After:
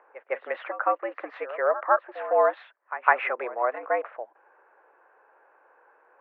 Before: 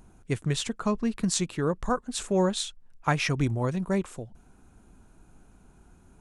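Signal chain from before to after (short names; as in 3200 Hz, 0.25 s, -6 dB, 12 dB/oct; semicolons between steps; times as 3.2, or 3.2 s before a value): mistuned SSB +110 Hz 440–2000 Hz; pre-echo 0.157 s -14.5 dB; gain +7.5 dB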